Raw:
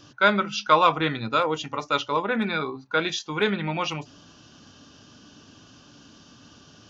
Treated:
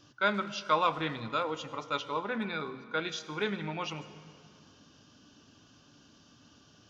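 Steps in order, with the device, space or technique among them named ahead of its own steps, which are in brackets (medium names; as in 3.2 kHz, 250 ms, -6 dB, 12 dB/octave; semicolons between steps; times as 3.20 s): saturated reverb return (on a send at -12.5 dB: reverberation RT60 2.2 s, pre-delay 65 ms + saturation -18.5 dBFS, distortion -14 dB); on the sum: trim -9 dB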